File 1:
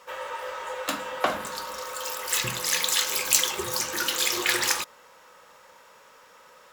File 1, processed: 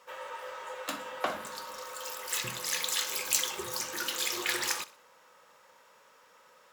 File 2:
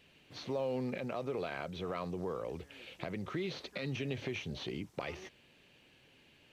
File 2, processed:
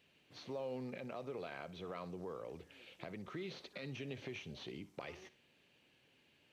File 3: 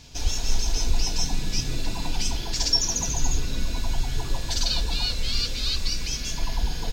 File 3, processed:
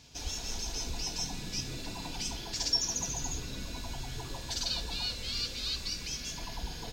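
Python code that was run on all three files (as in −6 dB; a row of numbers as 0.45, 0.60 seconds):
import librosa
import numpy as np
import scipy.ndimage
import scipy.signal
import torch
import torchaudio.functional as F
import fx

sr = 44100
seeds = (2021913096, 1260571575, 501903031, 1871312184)

y = fx.highpass(x, sr, hz=92.0, slope=6)
y = fx.echo_feedback(y, sr, ms=62, feedback_pct=41, wet_db=-18.0)
y = y * 10.0 ** (-7.0 / 20.0)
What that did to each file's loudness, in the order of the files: −7.0, −7.5, −7.5 LU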